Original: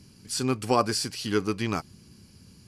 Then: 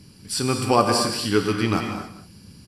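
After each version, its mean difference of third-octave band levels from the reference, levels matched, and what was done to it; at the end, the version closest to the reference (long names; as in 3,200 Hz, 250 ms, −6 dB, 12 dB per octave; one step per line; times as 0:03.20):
5.0 dB: notch filter 6,500 Hz, Q 5.2
single-tap delay 187 ms −14 dB
reverb whose tail is shaped and stops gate 300 ms flat, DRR 4 dB
level +4.5 dB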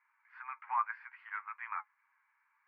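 20.0 dB: Chebyshev band-pass filter 890–2,200 Hz, order 4
dynamic equaliser 1,100 Hz, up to −3 dB, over −39 dBFS, Q 2.4
flanger 1.9 Hz, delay 7.2 ms, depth 2.4 ms, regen +46%
level +1.5 dB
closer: first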